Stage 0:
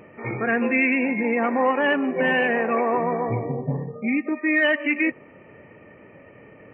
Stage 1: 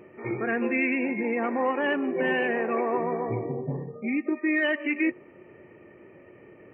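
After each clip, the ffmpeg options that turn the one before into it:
ffmpeg -i in.wav -af "equalizer=frequency=360:width=6:gain=13.5,volume=-6dB" out.wav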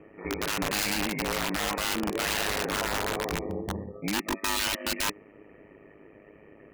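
ffmpeg -i in.wav -af "aeval=exprs='(mod(11.9*val(0)+1,2)-1)/11.9':channel_layout=same,aeval=exprs='val(0)*sin(2*PI*51*n/s)':channel_layout=same,volume=1dB" out.wav

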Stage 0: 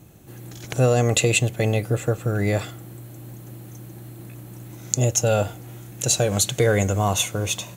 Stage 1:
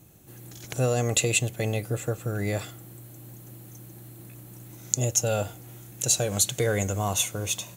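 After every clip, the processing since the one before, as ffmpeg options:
ffmpeg -i in.wav -af "highshelf=frequency=5100:gain=7.5,volume=-6.5dB" out.wav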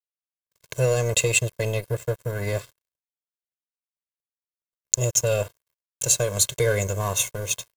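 ffmpeg -i in.wav -af "aeval=exprs='sgn(val(0))*max(abs(val(0))-0.015,0)':channel_layout=same,aecho=1:1:1.9:0.88,agate=range=-33dB:threshold=-56dB:ratio=3:detection=peak,volume=1dB" out.wav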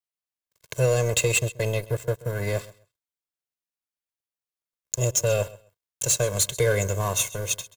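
ffmpeg -i in.wav -filter_complex "[0:a]aecho=1:1:131|262:0.1|0.018,acrossover=split=300[link_01][link_02];[link_02]asoftclip=type=hard:threshold=-16dB[link_03];[link_01][link_03]amix=inputs=2:normalize=0" out.wav

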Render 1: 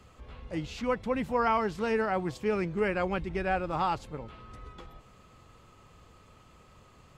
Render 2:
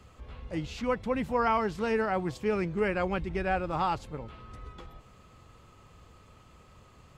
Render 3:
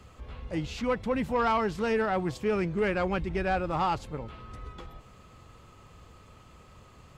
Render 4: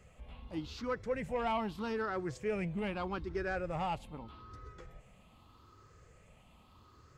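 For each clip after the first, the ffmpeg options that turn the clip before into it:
ffmpeg -i in.wav -af "equalizer=frequency=71:width_type=o:width=1.7:gain=3" out.wav
ffmpeg -i in.wav -af "asoftclip=type=tanh:threshold=-21dB,volume=2.5dB" out.wav
ffmpeg -i in.wav -af "afftfilt=real='re*pow(10,10/40*sin(2*PI*(0.52*log(max(b,1)*sr/1024/100)/log(2)-(0.81)*(pts-256)/sr)))':imag='im*pow(10,10/40*sin(2*PI*(0.52*log(max(b,1)*sr/1024/100)/log(2)-(0.81)*(pts-256)/sr)))':win_size=1024:overlap=0.75,volume=-9dB" out.wav

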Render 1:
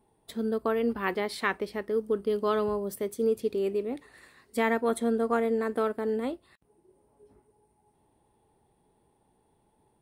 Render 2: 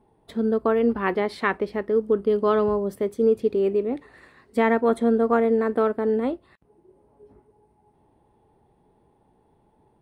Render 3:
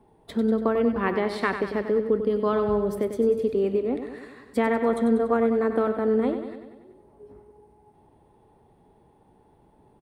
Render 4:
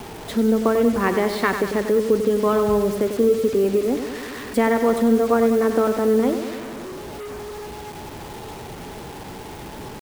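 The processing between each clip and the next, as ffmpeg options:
ffmpeg -i in.wav -af "lowpass=frequency=1600:poles=1,volume=7dB" out.wav
ffmpeg -i in.wav -filter_complex "[0:a]acrossover=split=160[link_01][link_02];[link_02]acompressor=threshold=-28dB:ratio=2[link_03];[link_01][link_03]amix=inputs=2:normalize=0,asplit=2[link_04][link_05];[link_05]aecho=0:1:96|192|288|384|480|576|672:0.355|0.209|0.124|0.0729|0.043|0.0254|0.015[link_06];[link_04][link_06]amix=inputs=2:normalize=0,volume=3dB" out.wav
ffmpeg -i in.wav -af "aeval=exprs='val(0)+0.5*0.0141*sgn(val(0))':channel_layout=same,acrusher=bits=6:mix=0:aa=0.000001,volume=4dB" out.wav

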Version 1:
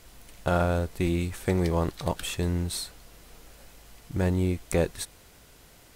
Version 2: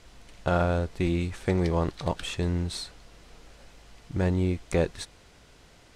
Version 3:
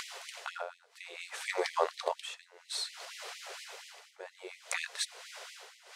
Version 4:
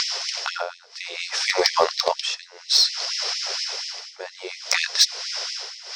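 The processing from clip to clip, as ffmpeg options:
ffmpeg -i in.wav -af "lowpass=6300" out.wav
ffmpeg -i in.wav -af "tremolo=f=0.6:d=0.97,acompressor=mode=upward:threshold=-32dB:ratio=2.5,afftfilt=real='re*gte(b*sr/1024,370*pow(1900/370,0.5+0.5*sin(2*PI*4.2*pts/sr)))':imag='im*gte(b*sr/1024,370*pow(1900/370,0.5+0.5*sin(2*PI*4.2*pts/sr)))':win_size=1024:overlap=0.75,volume=4.5dB" out.wav
ffmpeg -i in.wav -filter_complex "[0:a]lowpass=frequency=5300:width_type=q:width=8.6,asplit=2[link_01][link_02];[link_02]asoftclip=type=hard:threshold=-22dB,volume=-4.5dB[link_03];[link_01][link_03]amix=inputs=2:normalize=0,volume=7dB" out.wav

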